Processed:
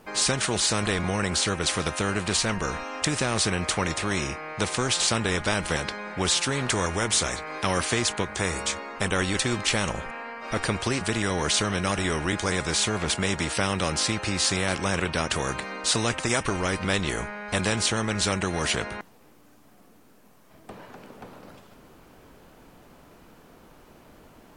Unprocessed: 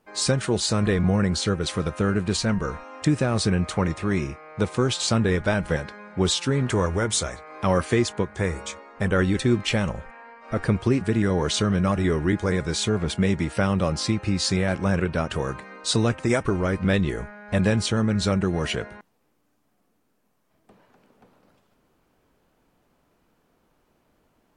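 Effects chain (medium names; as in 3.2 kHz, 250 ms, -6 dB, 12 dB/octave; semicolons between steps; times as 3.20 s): spectrum-flattening compressor 2:1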